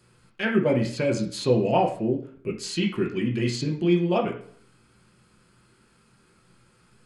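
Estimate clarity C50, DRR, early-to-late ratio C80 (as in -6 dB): 8.5 dB, -1.0 dB, 13.0 dB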